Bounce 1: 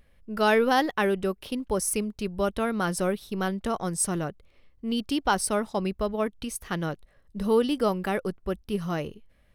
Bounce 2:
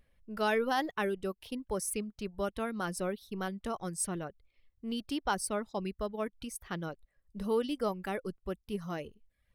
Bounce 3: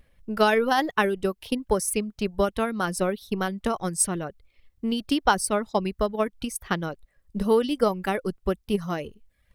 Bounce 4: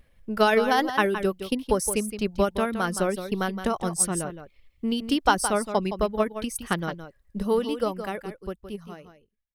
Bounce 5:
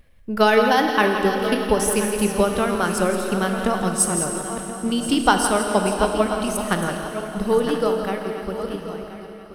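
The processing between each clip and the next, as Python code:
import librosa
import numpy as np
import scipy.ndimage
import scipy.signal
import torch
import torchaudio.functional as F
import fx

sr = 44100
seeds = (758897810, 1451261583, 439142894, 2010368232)

y1 = fx.dereverb_blind(x, sr, rt60_s=0.62)
y1 = F.gain(torch.from_numpy(y1), -7.5).numpy()
y2 = fx.transient(y1, sr, attack_db=7, sustain_db=2)
y2 = F.gain(torch.from_numpy(y2), 7.0).numpy()
y3 = fx.fade_out_tail(y2, sr, length_s=2.83)
y3 = y3 + 10.0 ** (-10.0 / 20.0) * np.pad(y3, (int(167 * sr / 1000.0), 0))[:len(y3)]
y4 = fx.reverse_delay_fb(y3, sr, ms=515, feedback_pct=50, wet_db=-9.5)
y4 = fx.rev_schroeder(y4, sr, rt60_s=3.2, comb_ms=26, drr_db=5.0)
y4 = F.gain(torch.from_numpy(y4), 3.5).numpy()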